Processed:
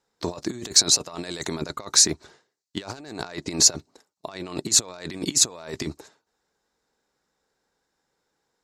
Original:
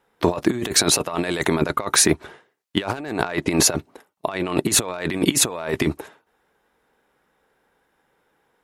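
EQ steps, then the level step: bass shelf 330 Hz +3 dB; high-order bell 5.6 kHz +14.5 dB 1.2 oct; -11.5 dB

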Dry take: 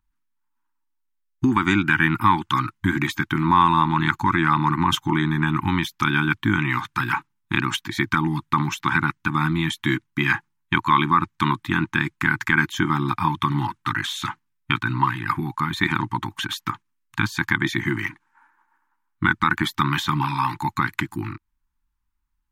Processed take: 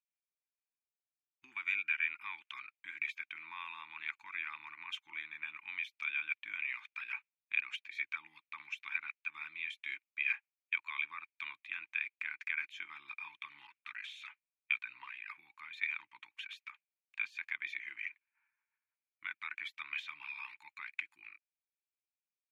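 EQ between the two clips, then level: band-pass filter 2.4 kHz, Q 10; differentiator; tilt EQ -3.5 dB/octave; +10.0 dB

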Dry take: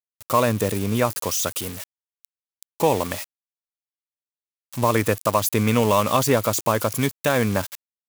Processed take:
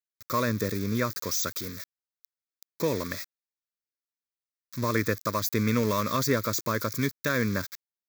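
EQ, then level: bass shelf 140 Hz -6 dB; static phaser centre 2.9 kHz, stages 6; -2.0 dB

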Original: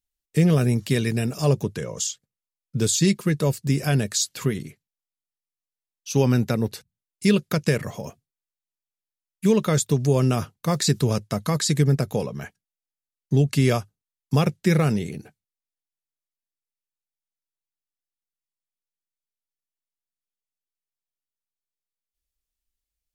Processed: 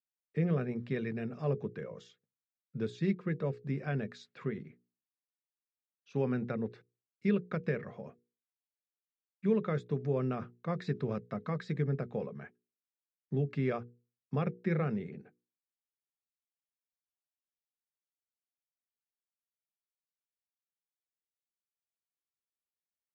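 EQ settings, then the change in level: distance through air 440 m; cabinet simulation 190–6500 Hz, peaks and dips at 300 Hz -7 dB, 630 Hz -4 dB, 920 Hz -7 dB, 3 kHz -9 dB, 4.5 kHz -7 dB; hum notches 60/120/180/240/300/360/420/480 Hz; -6.5 dB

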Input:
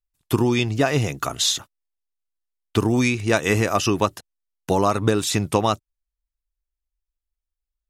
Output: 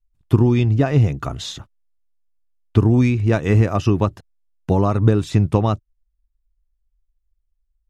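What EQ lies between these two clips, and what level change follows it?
RIAA curve playback; -3.0 dB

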